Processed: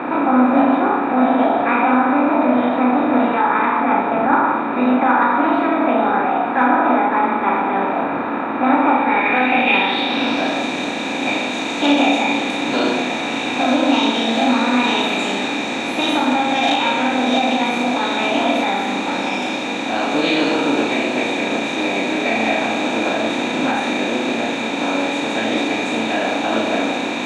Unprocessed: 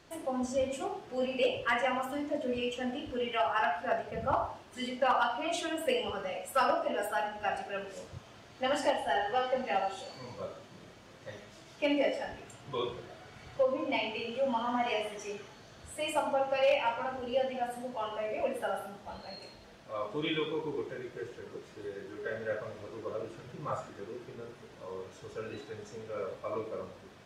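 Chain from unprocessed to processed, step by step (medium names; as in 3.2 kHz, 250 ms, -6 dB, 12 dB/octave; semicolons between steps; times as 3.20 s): spectral levelling over time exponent 0.4; high-pass 190 Hz 12 dB/octave; peaking EQ 3.9 kHz -9.5 dB 0.31 oct; in parallel at 0 dB: peak limiter -18 dBFS, peak gain reduction 6.5 dB; on the sum: formant shift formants +4 st; small resonant body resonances 250/2400/3700 Hz, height 17 dB, ringing for 20 ms; on a send: flutter echo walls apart 6.1 m, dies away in 0.3 s; on the sum: low-pass sweep 1.3 kHz -> 6.5 kHz, 8.89–10.62 s; trim -4.5 dB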